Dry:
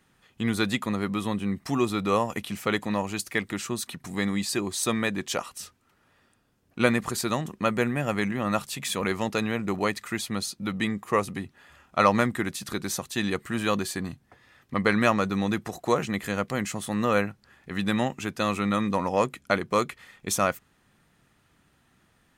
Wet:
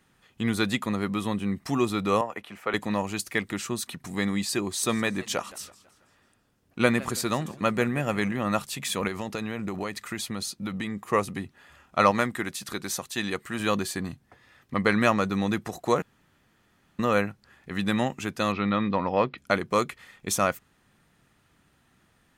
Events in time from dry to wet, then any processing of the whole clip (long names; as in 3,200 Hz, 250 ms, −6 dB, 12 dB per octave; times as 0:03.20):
0:02.21–0:02.74: three-way crossover with the lows and the highs turned down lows −14 dB, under 380 Hz, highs −15 dB, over 2,400 Hz
0:04.67–0:08.36: feedback echo with a swinging delay time 164 ms, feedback 46%, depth 172 cents, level −19.5 dB
0:09.07–0:11.09: downward compressor, threshold −27 dBFS
0:12.11–0:13.60: low-shelf EQ 340 Hz −6 dB
0:16.02–0:16.99: fill with room tone
0:18.52–0:19.38: Butterworth low-pass 4,800 Hz 48 dB per octave